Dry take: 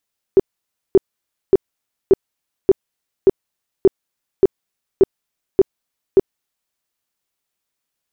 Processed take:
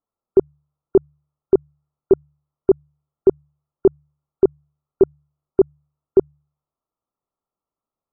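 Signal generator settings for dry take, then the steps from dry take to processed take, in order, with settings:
tone bursts 386 Hz, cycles 10, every 0.58 s, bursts 11, -5 dBFS
brick-wall FIR low-pass 1.4 kHz; de-hum 72.92 Hz, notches 2

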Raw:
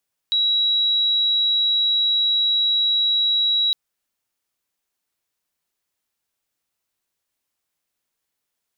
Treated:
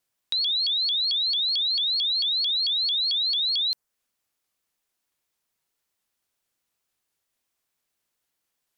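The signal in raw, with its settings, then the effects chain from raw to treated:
tone sine 3.88 kHz -16 dBFS 3.41 s
dynamic bell 3.4 kHz, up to -6 dB, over -34 dBFS, Q 1.1; vibrato with a chosen wave saw up 4.5 Hz, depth 250 cents

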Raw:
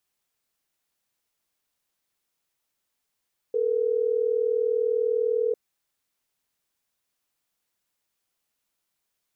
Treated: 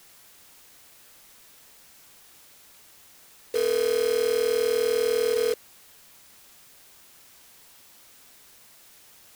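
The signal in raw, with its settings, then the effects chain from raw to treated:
call progress tone ringback tone, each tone -24 dBFS
block-companded coder 3-bit; added noise white -53 dBFS

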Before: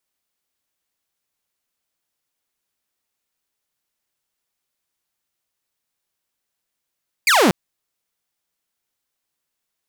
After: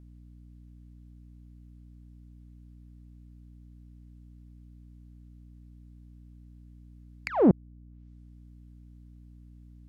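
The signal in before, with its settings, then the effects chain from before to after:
laser zap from 2.5 kHz, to 160 Hz, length 0.24 s saw, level -9 dB
low-pass that closes with the level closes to 400 Hz, closed at -31.5 dBFS; treble shelf 6.3 kHz -8 dB; hum 60 Hz, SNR 14 dB

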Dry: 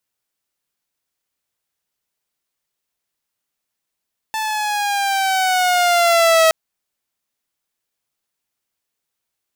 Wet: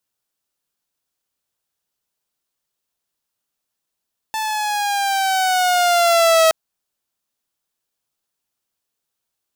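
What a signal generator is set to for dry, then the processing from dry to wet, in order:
gliding synth tone saw, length 2.17 s, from 881 Hz, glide -5.5 st, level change +10.5 dB, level -7 dB
peaking EQ 2.1 kHz -5 dB 0.49 oct

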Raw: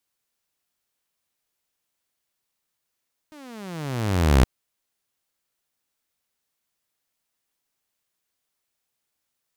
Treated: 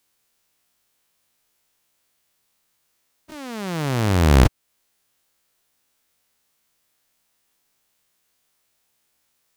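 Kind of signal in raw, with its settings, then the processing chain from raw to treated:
gliding synth tone saw, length 1.12 s, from 314 Hz, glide -28.5 st, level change +31.5 dB, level -9 dB
every event in the spectrogram widened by 60 ms; in parallel at 0 dB: compression, threshold -27 dBFS

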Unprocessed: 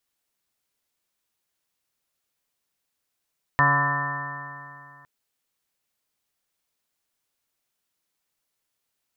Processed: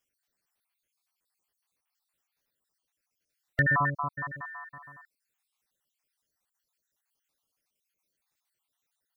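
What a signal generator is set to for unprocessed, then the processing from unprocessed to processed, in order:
stretched partials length 1.46 s, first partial 141 Hz, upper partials -9.5/-19/-11/-6/-12/4/-2.5/-4/-11/-14/4.5 dB, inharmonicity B 0.00083, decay 2.57 s, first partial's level -23 dB
random holes in the spectrogram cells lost 56%

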